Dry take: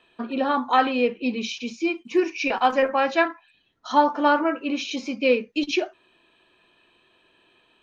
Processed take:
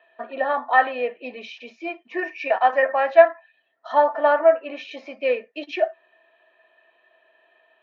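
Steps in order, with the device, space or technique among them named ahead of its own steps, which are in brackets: tin-can telephone (band-pass 530–2400 Hz; small resonant body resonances 650/1800 Hz, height 17 dB, ringing for 40 ms); trim -2 dB

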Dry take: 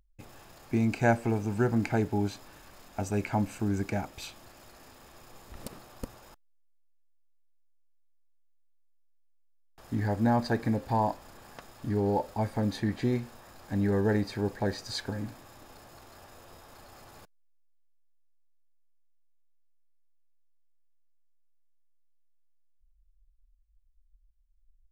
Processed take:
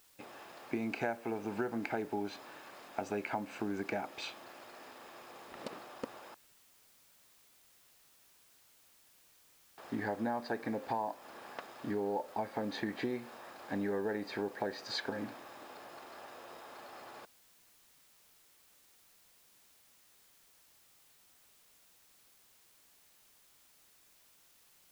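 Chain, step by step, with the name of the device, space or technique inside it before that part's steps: baby monitor (band-pass 320–3700 Hz; compression, threshold -36 dBFS, peak gain reduction 15.5 dB; white noise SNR 23 dB); trim +3.5 dB

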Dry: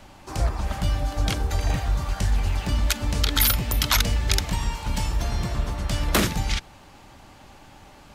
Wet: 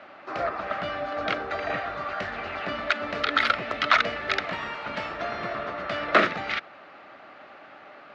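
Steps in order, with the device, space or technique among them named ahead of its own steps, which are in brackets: phone earpiece (cabinet simulation 370–3400 Hz, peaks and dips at 640 Hz +7 dB, 910 Hz -8 dB, 1.3 kHz +9 dB, 1.9 kHz +4 dB, 3.2 kHz -5 dB); trim +2.5 dB

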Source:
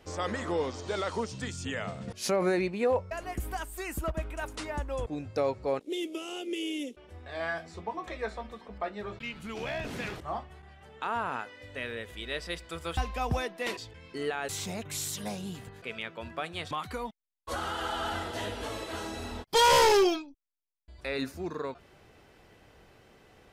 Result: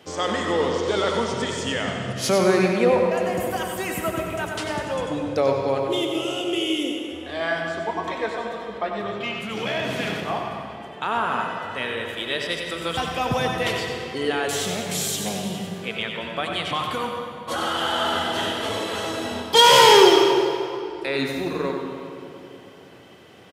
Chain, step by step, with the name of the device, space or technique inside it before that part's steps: PA in a hall (high-pass 110 Hz 24 dB/octave; peaking EQ 3.2 kHz +7 dB 0.22 oct; delay 94 ms -7.5 dB; reverberation RT60 2.9 s, pre-delay 66 ms, DRR 3 dB); trim +7 dB

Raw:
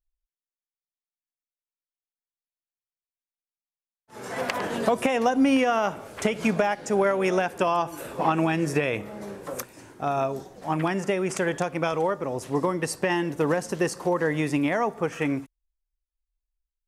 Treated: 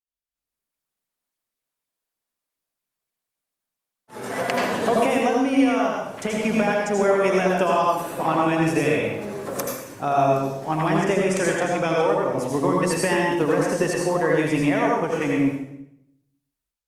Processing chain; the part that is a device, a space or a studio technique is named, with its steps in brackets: far-field microphone of a smart speaker (reverberation RT60 0.70 s, pre-delay 76 ms, DRR -1.5 dB; high-pass 92 Hz; level rider gain up to 14 dB; trim -7 dB; Opus 48 kbps 48 kHz)

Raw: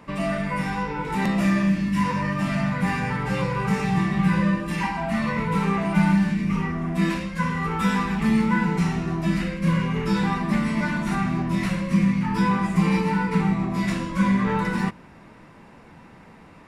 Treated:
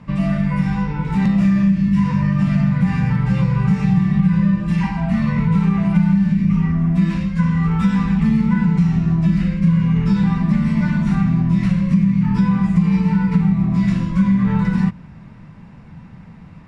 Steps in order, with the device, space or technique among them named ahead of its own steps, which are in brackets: jukebox (low-pass 6.9 kHz 12 dB/octave; resonant low shelf 240 Hz +11.5 dB, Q 1.5; compression 4:1, threshold -11 dBFS, peak gain reduction 8 dB); trim -1 dB

